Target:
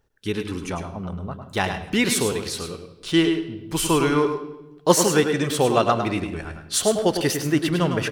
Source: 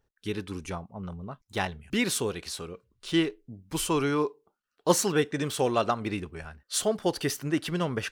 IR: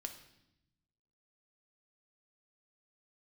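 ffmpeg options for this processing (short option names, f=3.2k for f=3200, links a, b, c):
-filter_complex "[0:a]asplit=2[a][b];[b]adelay=172,lowpass=f=850:p=1,volume=-15dB,asplit=2[c][d];[d]adelay=172,lowpass=f=850:p=1,volume=0.42,asplit=2[e][f];[f]adelay=172,lowpass=f=850:p=1,volume=0.42,asplit=2[g][h];[h]adelay=172,lowpass=f=850:p=1,volume=0.42[i];[a][c][e][g][i]amix=inputs=5:normalize=0,asplit=2[j][k];[1:a]atrim=start_sample=2205,adelay=103[l];[k][l]afir=irnorm=-1:irlink=0,volume=-3.5dB[m];[j][m]amix=inputs=2:normalize=0,volume=6dB"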